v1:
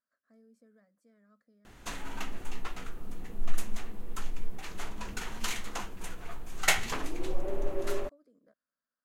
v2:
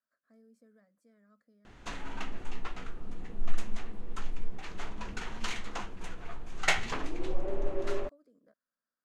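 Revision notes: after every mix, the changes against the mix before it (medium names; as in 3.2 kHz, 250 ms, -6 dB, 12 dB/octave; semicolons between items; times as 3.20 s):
background: add distance through air 86 m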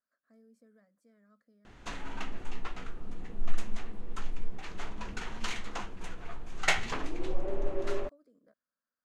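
no change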